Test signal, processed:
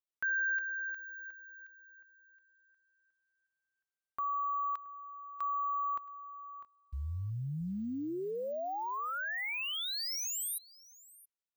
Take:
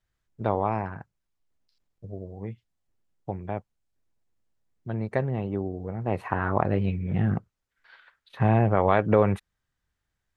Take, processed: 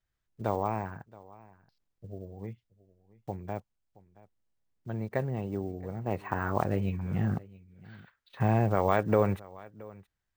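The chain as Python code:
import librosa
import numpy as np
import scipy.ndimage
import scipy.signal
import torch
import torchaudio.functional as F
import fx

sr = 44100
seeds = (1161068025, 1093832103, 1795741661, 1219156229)

y = fx.block_float(x, sr, bits=7)
y = np.repeat(scipy.signal.resample_poly(y, 1, 2), 2)[:len(y)]
y = y + 10.0 ** (-21.5 / 20.0) * np.pad(y, (int(673 * sr / 1000.0), 0))[:len(y)]
y = F.gain(torch.from_numpy(y), -4.5).numpy()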